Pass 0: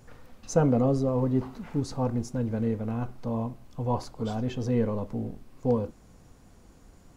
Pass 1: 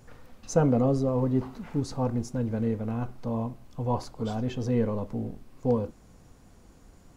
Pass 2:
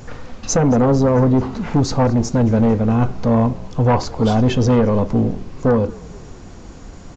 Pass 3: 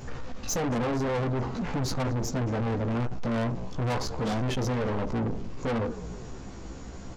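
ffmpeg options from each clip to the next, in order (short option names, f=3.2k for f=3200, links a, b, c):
-af anull
-filter_complex "[0:a]alimiter=limit=-19dB:level=0:latency=1:release=351,aresample=16000,aeval=exprs='0.119*sin(PI/2*1.58*val(0)/0.119)':c=same,aresample=44100,asplit=5[a][b][c][d][e];[b]adelay=222,afreqshift=-43,volume=-22dB[f];[c]adelay=444,afreqshift=-86,volume=-26.9dB[g];[d]adelay=666,afreqshift=-129,volume=-31.8dB[h];[e]adelay=888,afreqshift=-172,volume=-36.6dB[i];[a][f][g][h][i]amix=inputs=5:normalize=0,volume=9dB"
-af "flanger=delay=15:depth=2.8:speed=0.45,asoftclip=type=tanh:threshold=-26dB"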